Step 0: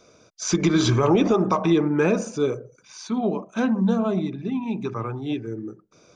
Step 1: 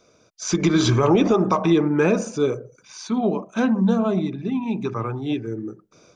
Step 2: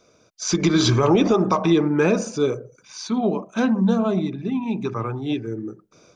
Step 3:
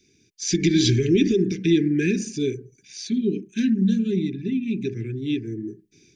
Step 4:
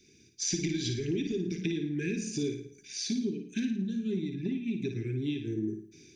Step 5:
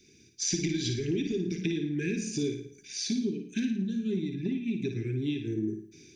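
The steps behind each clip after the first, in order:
level rider gain up to 6 dB; trim -3.5 dB
dynamic bell 4.6 kHz, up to +5 dB, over -46 dBFS, Q 2
Chebyshev band-stop 410–1700 Hz, order 5
compression, threshold -30 dBFS, peak gain reduction 15.5 dB; on a send: flutter echo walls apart 9.5 m, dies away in 0.51 s
on a send at -12.5 dB: Bessel high-pass 1.9 kHz + reverberation RT60 0.40 s, pre-delay 58 ms; on the sum: trim +1.5 dB

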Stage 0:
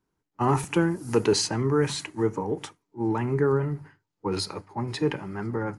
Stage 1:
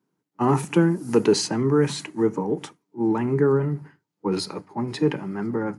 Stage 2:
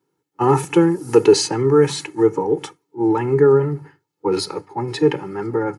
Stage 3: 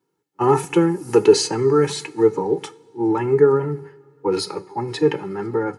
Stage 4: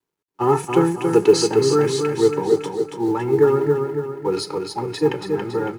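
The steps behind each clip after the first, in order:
high-pass 160 Hz 24 dB/octave; bass shelf 290 Hz +10.5 dB
comb 2.3 ms, depth 75%; trim +3 dB
two-slope reverb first 0.4 s, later 3.2 s, from -18 dB, DRR 16.5 dB; flange 1.4 Hz, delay 4 ms, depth 1.3 ms, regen +71%; trim +3 dB
companding laws mixed up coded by A; on a send: feedback delay 279 ms, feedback 48%, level -5 dB; on the sum: trim -1 dB

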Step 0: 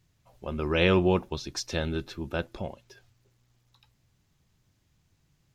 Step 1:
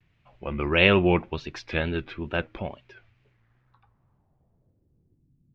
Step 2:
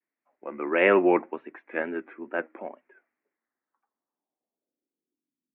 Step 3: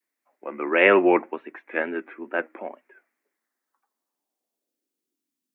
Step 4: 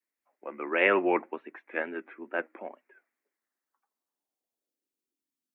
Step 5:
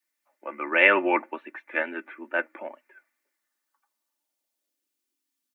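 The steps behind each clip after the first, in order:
low-pass sweep 2.4 kHz -> 220 Hz, 3.24–5.53 s; wow and flutter 110 cents; trim +2 dB
elliptic band-pass 260–2000 Hz, stop band 40 dB; three bands expanded up and down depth 40%
high-pass 180 Hz 12 dB/octave; treble shelf 2.8 kHz +8 dB; trim +2.5 dB
harmonic-percussive split percussive +4 dB; trim -9 dB
tilt shelf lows -5 dB, about 750 Hz; comb 3.4 ms, depth 56%; trim +2.5 dB

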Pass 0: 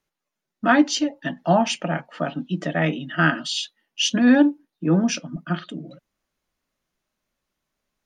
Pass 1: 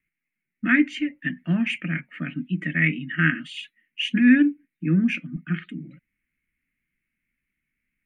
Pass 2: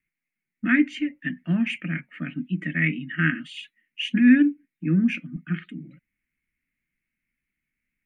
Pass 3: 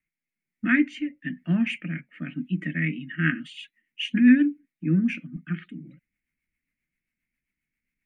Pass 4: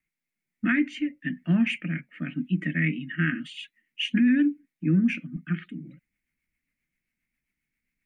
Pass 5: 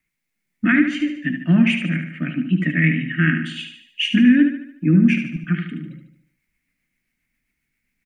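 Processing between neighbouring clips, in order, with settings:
FFT filter 270 Hz 0 dB, 510 Hz -19 dB, 820 Hz -29 dB, 2.2 kHz +12 dB, 3.4 kHz -13 dB, 5.3 kHz -29 dB, 9.7 kHz -5 dB
dynamic bell 240 Hz, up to +3 dB, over -31 dBFS, Q 1.5; trim -2.5 dB
rotary cabinet horn 1.1 Hz, later 7.5 Hz, at 2.70 s
peak limiter -16 dBFS, peak gain reduction 8.5 dB; trim +1.5 dB
feedback delay 74 ms, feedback 49%, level -7.5 dB; trim +7 dB

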